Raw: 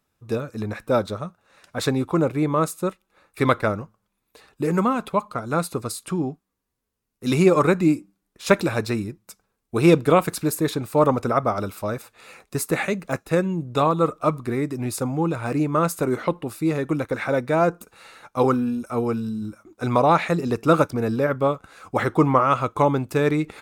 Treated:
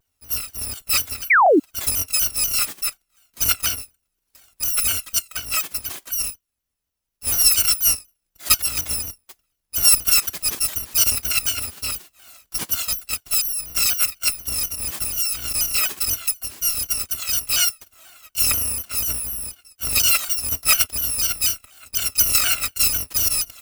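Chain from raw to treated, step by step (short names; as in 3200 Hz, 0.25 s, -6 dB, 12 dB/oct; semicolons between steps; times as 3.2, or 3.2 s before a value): FFT order left unsorted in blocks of 256 samples; painted sound fall, 1.3–1.6, 260–2400 Hz -13 dBFS; shaped vibrato saw down 4.1 Hz, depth 160 cents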